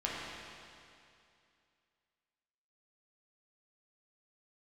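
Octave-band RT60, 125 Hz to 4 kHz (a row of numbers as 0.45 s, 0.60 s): 2.5 s, 2.5 s, 2.5 s, 2.5 s, 2.5 s, 2.4 s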